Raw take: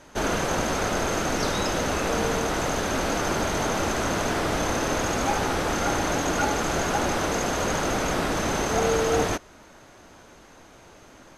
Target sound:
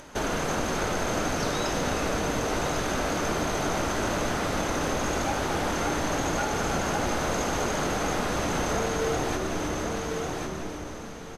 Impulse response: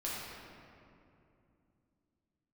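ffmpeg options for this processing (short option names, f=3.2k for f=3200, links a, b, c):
-filter_complex "[0:a]asplit=2[a][b];[b]asplit=7[c][d][e][f][g][h][i];[c]adelay=317,afreqshift=-74,volume=-10dB[j];[d]adelay=634,afreqshift=-148,volume=-14.3dB[k];[e]adelay=951,afreqshift=-222,volume=-18.6dB[l];[f]adelay=1268,afreqshift=-296,volume=-22.9dB[m];[g]adelay=1585,afreqshift=-370,volume=-27.2dB[n];[h]adelay=1902,afreqshift=-444,volume=-31.5dB[o];[i]adelay=2219,afreqshift=-518,volume=-35.8dB[p];[j][k][l][m][n][o][p]amix=inputs=7:normalize=0[q];[a][q]amix=inputs=2:normalize=0,acompressor=mode=upward:threshold=-47dB:ratio=2.5,aecho=1:1:1096|2192:0.316|0.0538,acompressor=threshold=-30dB:ratio=2.5,asplit=2[r][s];[1:a]atrim=start_sample=2205,asetrate=37926,aresample=44100[t];[s][t]afir=irnorm=-1:irlink=0,volume=-8.5dB[u];[r][u]amix=inputs=2:normalize=0"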